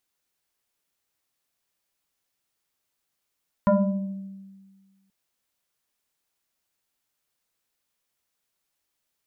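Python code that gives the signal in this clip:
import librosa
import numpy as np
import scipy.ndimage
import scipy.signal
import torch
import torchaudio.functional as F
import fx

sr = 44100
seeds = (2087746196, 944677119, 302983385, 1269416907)

y = fx.fm2(sr, length_s=1.43, level_db=-14.0, carrier_hz=194.0, ratio=2.07, index=2.0, index_s=1.23, decay_s=1.64, shape='exponential')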